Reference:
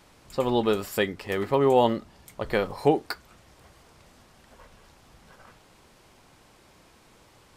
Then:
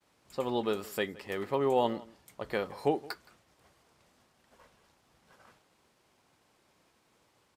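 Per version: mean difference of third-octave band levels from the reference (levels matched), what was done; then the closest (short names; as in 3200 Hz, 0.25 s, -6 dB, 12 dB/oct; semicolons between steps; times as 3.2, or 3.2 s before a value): 2.0 dB: HPF 140 Hz 6 dB/oct; expander -52 dBFS; outdoor echo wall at 29 m, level -21 dB; gain -7 dB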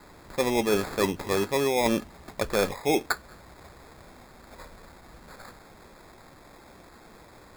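7.5 dB: bell 120 Hz -4.5 dB 0.77 oct; reverse; compressor 16:1, threshold -26 dBFS, peak gain reduction 13 dB; reverse; sample-and-hold 15×; gain +6 dB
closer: first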